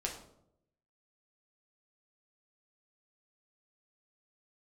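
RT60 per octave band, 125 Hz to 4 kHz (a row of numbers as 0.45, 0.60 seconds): 1.0, 0.90, 0.85, 0.65, 0.45, 0.45 seconds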